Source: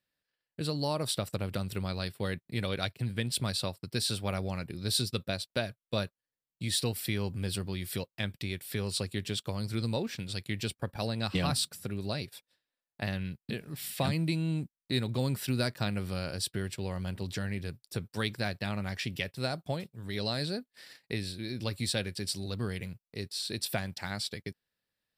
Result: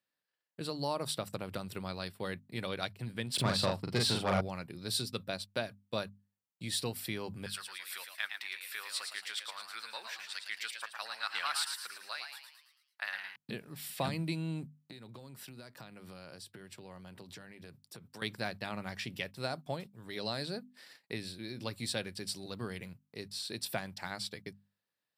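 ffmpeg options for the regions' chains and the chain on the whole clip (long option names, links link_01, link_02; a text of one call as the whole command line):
ffmpeg -i in.wav -filter_complex "[0:a]asettb=1/sr,asplit=3[link_01][link_02][link_03];[link_01]atrim=end=3.344[link_04];[link_02]atrim=start=3.34:end=4.41,asetpts=PTS-STARTPTS,afade=type=in:duration=0.004:curve=qsin,afade=type=out:start_time=1.066:duration=0.004:curve=qsin,lowpass=frequency=3100:poles=1,aeval=exprs='0.112*sin(PI/2*1.78*val(0)/0.112)':channel_layout=same,asplit=2[link_05][link_06];[link_06]adelay=41,volume=-3dB[link_07];[link_05][link_07]amix=inputs=2:normalize=0,atrim=end_sample=47187[link_08];[link_03]atrim=start=4.406[link_09];[link_04][link_08]acrossfade=duration=0.004:curve1=hsin:curve2=qsin[link_10];[link_10][link_09]acrossfade=duration=0.004:curve1=qsin:curve2=hsin,asettb=1/sr,asplit=3[link_11][link_12][link_13];[link_11]atrim=end=7.464[link_14];[link_12]atrim=start=7.46:end=13.36,asetpts=PTS-STARTPTS,afade=type=in:duration=0.004:curve=qsin,afade=type=out:start_time=5.896:duration=0.004:curve=qsin,highpass=frequency=1400:width_type=q:width=2.2,asplit=7[link_15][link_16][link_17][link_18][link_19][link_20][link_21];[link_16]adelay=111,afreqshift=110,volume=-6dB[link_22];[link_17]adelay=222,afreqshift=220,volume=-12.2dB[link_23];[link_18]adelay=333,afreqshift=330,volume=-18.4dB[link_24];[link_19]adelay=444,afreqshift=440,volume=-24.6dB[link_25];[link_20]adelay=555,afreqshift=550,volume=-30.8dB[link_26];[link_21]adelay=666,afreqshift=660,volume=-37dB[link_27];[link_15][link_22][link_23][link_24][link_25][link_26][link_27]amix=inputs=7:normalize=0,atrim=end_sample=260190[link_28];[link_13]atrim=start=13.356[link_29];[link_14][link_28]acrossfade=duration=0.004:curve1=hsin:curve2=qsin[link_30];[link_30][link_29]acrossfade=duration=0.004:curve1=qsin:curve2=hsin,asettb=1/sr,asplit=3[link_31][link_32][link_33];[link_31]atrim=end=14.774[link_34];[link_32]atrim=start=14.77:end=18.22,asetpts=PTS-STARTPTS,afade=type=in:duration=0.004:curve=qsin,afade=type=out:start_time=3.446:duration=0.004:curve=qsin,highpass=frequency=87:width=0.5412,highpass=frequency=87:width=1.3066,acompressor=threshold=-40dB:ratio=12:attack=3.2:release=140:knee=1:detection=peak[link_35];[link_33]atrim=start=18.216[link_36];[link_34][link_35]acrossfade=duration=0.004:curve1=hsin:curve2=qsin[link_37];[link_37][link_36]acrossfade=duration=0.004:curve1=qsin:curve2=hsin,highpass=120,equalizer=frequency=990:width_type=o:width=1.1:gain=4.5,bandreject=frequency=50:width_type=h:width=6,bandreject=frequency=100:width_type=h:width=6,bandreject=frequency=150:width_type=h:width=6,bandreject=frequency=200:width_type=h:width=6,bandreject=frequency=250:width_type=h:width=6,volume=-4.5dB" out.wav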